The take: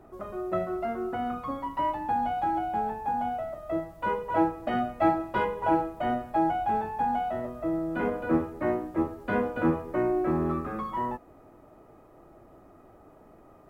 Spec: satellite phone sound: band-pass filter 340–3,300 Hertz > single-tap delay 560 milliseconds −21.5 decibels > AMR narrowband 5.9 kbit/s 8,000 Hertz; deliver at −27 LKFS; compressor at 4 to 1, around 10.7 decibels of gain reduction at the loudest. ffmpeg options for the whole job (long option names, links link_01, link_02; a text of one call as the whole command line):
ffmpeg -i in.wav -af "acompressor=threshold=-32dB:ratio=4,highpass=340,lowpass=3300,aecho=1:1:560:0.0841,volume=11dB" -ar 8000 -c:a libopencore_amrnb -b:a 5900 out.amr